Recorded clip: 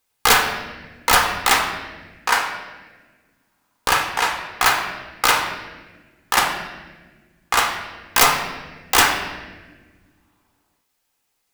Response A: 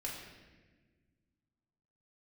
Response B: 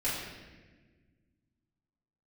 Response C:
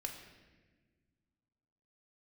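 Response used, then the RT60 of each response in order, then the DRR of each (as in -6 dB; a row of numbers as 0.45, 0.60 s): C; 1.4, 1.4, 1.4 s; -4.0, -11.0, 2.0 dB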